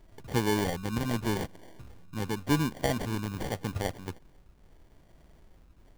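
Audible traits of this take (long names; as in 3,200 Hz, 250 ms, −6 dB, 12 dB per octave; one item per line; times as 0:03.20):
phaser sweep stages 8, 0.83 Hz, lowest notch 610–4,400 Hz
aliases and images of a low sample rate 1,300 Hz, jitter 0%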